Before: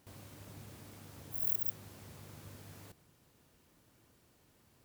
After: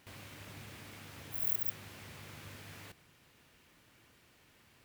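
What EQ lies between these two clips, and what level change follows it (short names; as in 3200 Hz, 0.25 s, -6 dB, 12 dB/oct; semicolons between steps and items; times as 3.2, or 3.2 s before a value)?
bell 2300 Hz +10.5 dB 1.9 oct; 0.0 dB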